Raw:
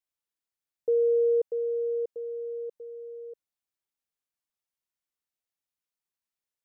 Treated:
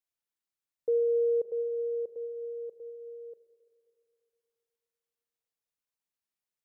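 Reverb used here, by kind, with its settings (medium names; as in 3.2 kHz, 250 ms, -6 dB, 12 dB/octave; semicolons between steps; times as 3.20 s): spring tank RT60 2.8 s, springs 33/38/43 ms, chirp 50 ms, DRR 11.5 dB; trim -2.5 dB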